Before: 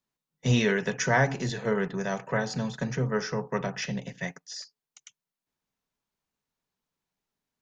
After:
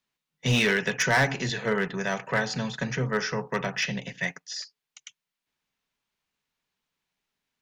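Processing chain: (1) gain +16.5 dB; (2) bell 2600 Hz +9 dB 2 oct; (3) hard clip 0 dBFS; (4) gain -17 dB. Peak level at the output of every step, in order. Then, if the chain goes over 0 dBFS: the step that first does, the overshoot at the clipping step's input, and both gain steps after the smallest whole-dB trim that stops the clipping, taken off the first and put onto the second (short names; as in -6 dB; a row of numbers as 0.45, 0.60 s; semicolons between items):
+5.5, +10.0, 0.0, -17.0 dBFS; step 1, 10.0 dB; step 1 +6.5 dB, step 4 -7 dB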